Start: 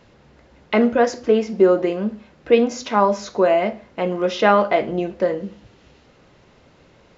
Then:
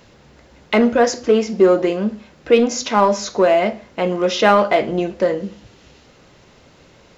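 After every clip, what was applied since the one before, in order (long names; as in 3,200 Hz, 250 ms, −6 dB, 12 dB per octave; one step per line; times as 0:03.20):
high-shelf EQ 4,900 Hz +10 dB
in parallel at −8 dB: gain into a clipping stage and back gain 16 dB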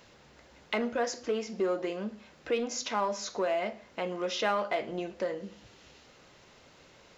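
low-shelf EQ 420 Hz −7.5 dB
downward compressor 1.5 to 1, threshold −35 dBFS, peak gain reduction 9 dB
level −5.5 dB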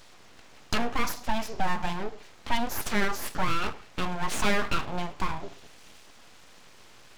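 full-wave rectification
level +6.5 dB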